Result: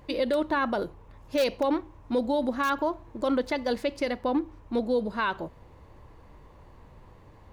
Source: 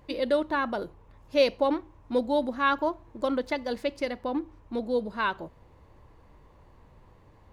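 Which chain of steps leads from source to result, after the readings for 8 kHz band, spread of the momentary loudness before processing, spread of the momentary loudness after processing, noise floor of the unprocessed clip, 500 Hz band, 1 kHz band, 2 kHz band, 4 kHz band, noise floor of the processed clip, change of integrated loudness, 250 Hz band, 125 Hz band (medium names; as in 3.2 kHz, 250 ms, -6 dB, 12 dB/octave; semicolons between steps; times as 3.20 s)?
no reading, 10 LU, 6 LU, -57 dBFS, 0.0 dB, 0.0 dB, -0.5 dB, -0.5 dB, -53 dBFS, 0.0 dB, +2.0 dB, +3.5 dB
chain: in parallel at -12 dB: integer overflow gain 14.5 dB; on the sum: peak limiter -19.5 dBFS, peak gain reduction 7 dB; trim +2 dB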